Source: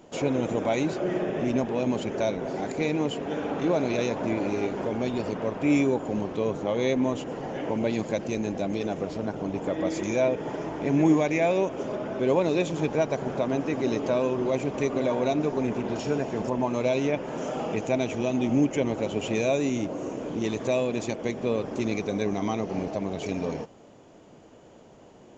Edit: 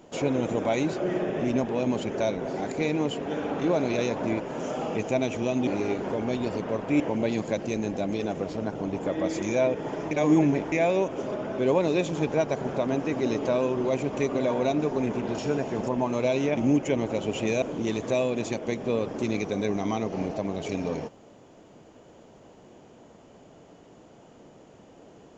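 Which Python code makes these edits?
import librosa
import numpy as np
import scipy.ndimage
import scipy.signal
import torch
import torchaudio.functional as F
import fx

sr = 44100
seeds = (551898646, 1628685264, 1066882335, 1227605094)

y = fx.edit(x, sr, fx.cut(start_s=5.73, length_s=1.88),
    fx.reverse_span(start_s=10.72, length_s=0.61),
    fx.move(start_s=17.18, length_s=1.27, to_s=4.4),
    fx.cut(start_s=19.5, length_s=0.69), tone=tone)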